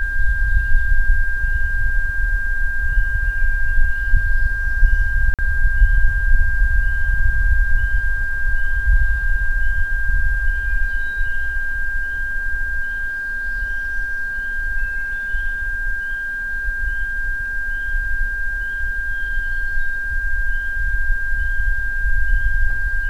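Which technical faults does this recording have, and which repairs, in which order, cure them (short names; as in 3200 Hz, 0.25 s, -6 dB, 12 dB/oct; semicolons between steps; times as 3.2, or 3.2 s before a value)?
tone 1600 Hz -22 dBFS
5.34–5.39 gap 47 ms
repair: notch 1600 Hz, Q 30; interpolate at 5.34, 47 ms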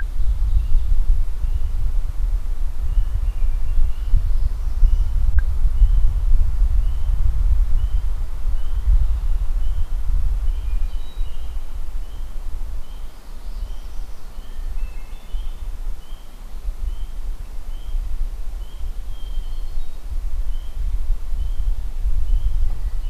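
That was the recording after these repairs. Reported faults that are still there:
none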